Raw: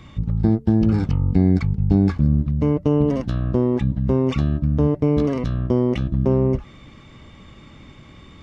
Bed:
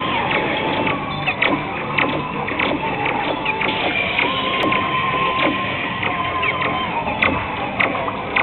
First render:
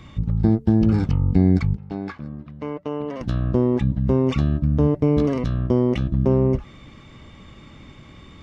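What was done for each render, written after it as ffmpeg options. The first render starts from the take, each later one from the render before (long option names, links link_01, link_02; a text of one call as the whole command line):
ffmpeg -i in.wav -filter_complex "[0:a]asettb=1/sr,asplit=3[link_01][link_02][link_03];[link_01]atrim=end=1.774[link_04];[link_02]atrim=start=1.77:end=3.21,asetpts=PTS-STARTPTS,afade=type=in:duration=0.004:curve=qsin,afade=type=out:start_time=1.436:duration=0.004:curve=qsin,bandpass=frequency=1600:width_type=q:width=0.64[link_05];[link_03]atrim=start=3.206[link_06];[link_04][link_05]acrossfade=duration=0.004:curve1=hsin:curve2=qsin[link_07];[link_07][link_06]acrossfade=duration=0.004:curve1=qsin:curve2=hsin" out.wav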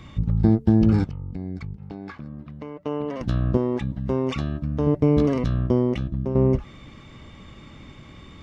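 ffmpeg -i in.wav -filter_complex "[0:a]asplit=3[link_01][link_02][link_03];[link_01]afade=type=out:start_time=1.03:duration=0.02[link_04];[link_02]acompressor=threshold=-31dB:ratio=4:attack=3.2:release=140:knee=1:detection=peak,afade=type=in:start_time=1.03:duration=0.02,afade=type=out:start_time=2.8:duration=0.02[link_05];[link_03]afade=type=in:start_time=2.8:duration=0.02[link_06];[link_04][link_05][link_06]amix=inputs=3:normalize=0,asettb=1/sr,asplit=3[link_07][link_08][link_09];[link_07]atrim=end=3.574[link_10];[link_08]atrim=start=3.57:end=4.87,asetpts=PTS-STARTPTS,afade=type=in:duration=0.004:curve=qsin,afade=type=out:start_time=1.296:duration=0.004:curve=qsin,lowshelf=frequency=350:gain=-8.5[link_11];[link_09]atrim=start=4.866[link_12];[link_10][link_11]acrossfade=duration=0.004:curve1=hsin:curve2=qsin[link_13];[link_13][link_12]acrossfade=duration=0.004:curve1=qsin:curve2=hsin,asplit=2[link_14][link_15];[link_14]atrim=end=6.35,asetpts=PTS-STARTPTS,afade=type=out:start_time=5.58:duration=0.77:silence=0.316228[link_16];[link_15]atrim=start=6.35,asetpts=PTS-STARTPTS,afade=type=in:duration=0.004:curve=hsin:silence=0.316228[link_17];[link_16][link_17]concat=n=2:v=0:a=1" out.wav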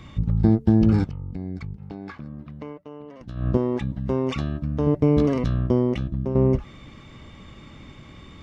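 ffmpeg -i in.wav -filter_complex "[0:a]asplit=3[link_01][link_02][link_03];[link_01]atrim=end=2.84,asetpts=PTS-STARTPTS,afade=type=out:start_time=2.71:duration=0.13:silence=0.237137[link_04];[link_02]atrim=start=2.84:end=3.35,asetpts=PTS-STARTPTS,volume=-12.5dB[link_05];[link_03]atrim=start=3.35,asetpts=PTS-STARTPTS,afade=type=in:duration=0.13:silence=0.237137[link_06];[link_04][link_05][link_06]concat=n=3:v=0:a=1" out.wav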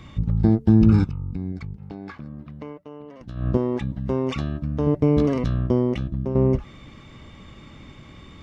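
ffmpeg -i in.wav -filter_complex "[0:a]asettb=1/sr,asplit=3[link_01][link_02][link_03];[link_01]atrim=end=0.694[link_04];[link_02]atrim=start=0.69:end=1.52,asetpts=PTS-STARTPTS,afade=type=in:duration=0.004:curve=qsin,afade=type=out:start_time=0.826:duration=0.004:curve=qsin,aecho=1:1:0.8:0.53,atrim=end_sample=36603[link_05];[link_03]atrim=start=1.516[link_06];[link_04][link_05]acrossfade=duration=0.004:curve1=hsin:curve2=qsin[link_07];[link_07][link_06]acrossfade=duration=0.004:curve1=qsin:curve2=hsin" out.wav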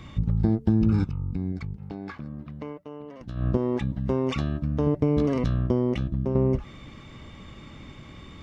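ffmpeg -i in.wav -af "acompressor=threshold=-19dB:ratio=3" out.wav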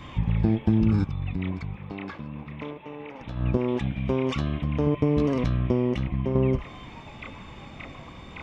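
ffmpeg -i in.wav -i bed.wav -filter_complex "[1:a]volume=-25.5dB[link_01];[0:a][link_01]amix=inputs=2:normalize=0" out.wav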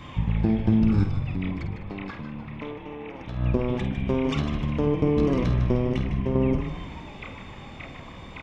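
ffmpeg -i in.wav -filter_complex "[0:a]asplit=2[link_01][link_02];[link_02]adelay=50,volume=-9dB[link_03];[link_01][link_03]amix=inputs=2:normalize=0,asplit=7[link_04][link_05][link_06][link_07][link_08][link_09][link_10];[link_05]adelay=153,afreqshift=-110,volume=-9dB[link_11];[link_06]adelay=306,afreqshift=-220,volume=-14.5dB[link_12];[link_07]adelay=459,afreqshift=-330,volume=-20dB[link_13];[link_08]adelay=612,afreqshift=-440,volume=-25.5dB[link_14];[link_09]adelay=765,afreqshift=-550,volume=-31.1dB[link_15];[link_10]adelay=918,afreqshift=-660,volume=-36.6dB[link_16];[link_04][link_11][link_12][link_13][link_14][link_15][link_16]amix=inputs=7:normalize=0" out.wav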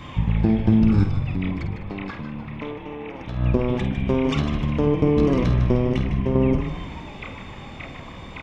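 ffmpeg -i in.wav -af "volume=3.5dB" out.wav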